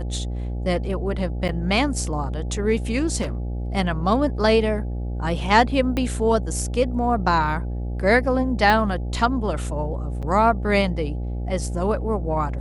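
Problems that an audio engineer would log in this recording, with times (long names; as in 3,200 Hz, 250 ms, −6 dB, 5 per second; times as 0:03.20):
mains buzz 60 Hz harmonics 14 −27 dBFS
0:01.48–0:01.49: drop-out 8.9 ms
0:03.21–0:03.40: clipping −22.5 dBFS
0:05.97: click −12 dBFS
0:08.70: click −8 dBFS
0:10.22–0:10.23: drop-out 7.1 ms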